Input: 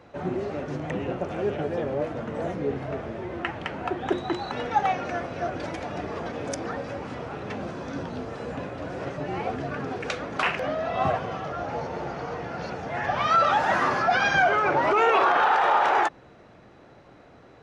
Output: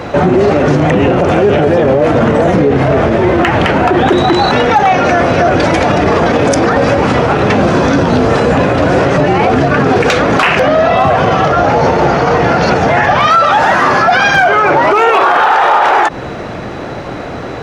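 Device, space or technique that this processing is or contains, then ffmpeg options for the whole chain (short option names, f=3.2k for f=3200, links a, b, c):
loud club master: -af "acompressor=threshold=-25dB:ratio=2.5,asoftclip=type=hard:threshold=-19dB,alimiter=level_in=30dB:limit=-1dB:release=50:level=0:latency=1,volume=-1dB"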